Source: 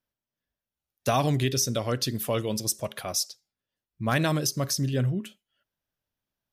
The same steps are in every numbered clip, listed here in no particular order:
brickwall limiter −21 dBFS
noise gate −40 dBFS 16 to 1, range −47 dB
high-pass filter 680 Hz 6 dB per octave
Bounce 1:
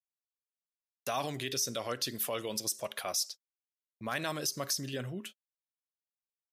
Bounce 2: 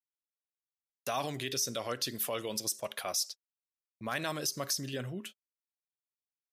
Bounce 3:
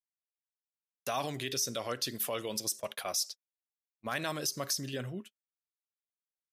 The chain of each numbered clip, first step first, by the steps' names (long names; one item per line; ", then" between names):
noise gate, then brickwall limiter, then high-pass filter
brickwall limiter, then noise gate, then high-pass filter
brickwall limiter, then high-pass filter, then noise gate